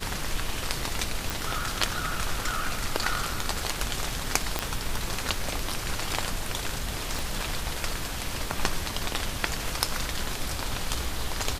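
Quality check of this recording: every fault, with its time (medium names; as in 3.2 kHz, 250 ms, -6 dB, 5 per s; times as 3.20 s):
1.30 s: pop
4.59 s: pop -8 dBFS
7.19 s: pop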